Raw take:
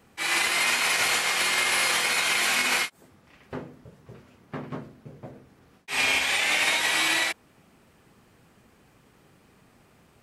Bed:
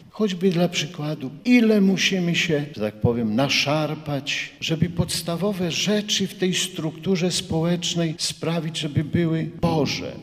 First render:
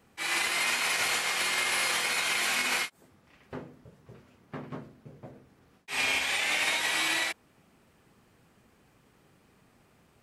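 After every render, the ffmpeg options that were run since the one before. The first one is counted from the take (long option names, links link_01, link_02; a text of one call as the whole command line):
ffmpeg -i in.wav -af "volume=-4.5dB" out.wav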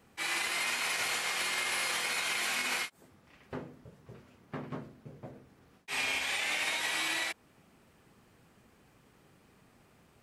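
ffmpeg -i in.wav -af "acompressor=threshold=-33dB:ratio=2" out.wav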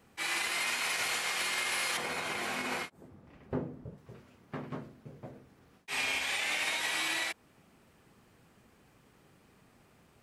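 ffmpeg -i in.wav -filter_complex "[0:a]asettb=1/sr,asplit=3[link_01][link_02][link_03];[link_01]atrim=end=1.974[link_04];[link_02]atrim=start=1.97:end=3.98,asetpts=PTS-STARTPTS,afade=type=in:duration=0.004:curve=qsin,afade=type=out:start_time=2.006:duration=0.004:curve=qsin,tiltshelf=frequency=1200:gain=8[link_05];[link_03]atrim=start=3.976[link_06];[link_04][link_05]acrossfade=duration=0.004:curve1=hsin:curve2=qsin[link_07];[link_07][link_06]acrossfade=duration=0.004:curve1=qsin:curve2=hsin" out.wav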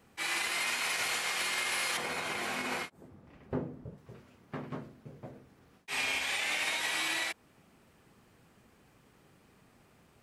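ffmpeg -i in.wav -af anull out.wav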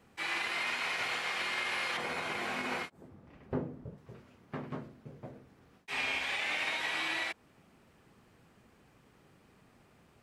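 ffmpeg -i in.wav -filter_complex "[0:a]acrossover=split=4400[link_01][link_02];[link_02]acompressor=threshold=-49dB:ratio=4:attack=1:release=60[link_03];[link_01][link_03]amix=inputs=2:normalize=0,highshelf=frequency=6800:gain=-6" out.wav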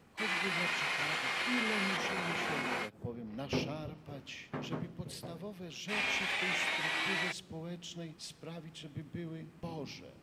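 ffmpeg -i in.wav -i bed.wav -filter_complex "[1:a]volume=-21.5dB[link_01];[0:a][link_01]amix=inputs=2:normalize=0" out.wav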